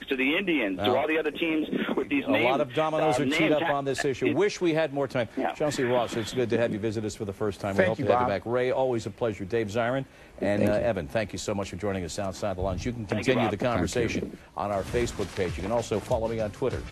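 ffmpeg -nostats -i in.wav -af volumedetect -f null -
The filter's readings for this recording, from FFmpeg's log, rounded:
mean_volume: -27.0 dB
max_volume: -7.8 dB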